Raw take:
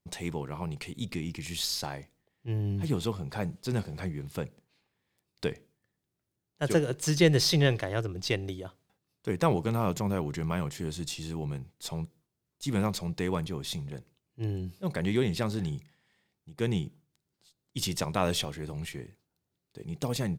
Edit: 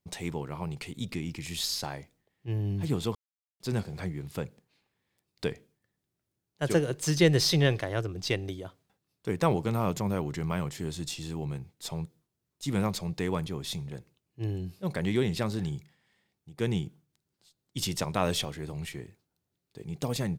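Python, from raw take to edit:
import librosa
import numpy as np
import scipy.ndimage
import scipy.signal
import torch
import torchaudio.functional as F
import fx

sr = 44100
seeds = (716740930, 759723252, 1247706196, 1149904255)

y = fx.edit(x, sr, fx.silence(start_s=3.15, length_s=0.45), tone=tone)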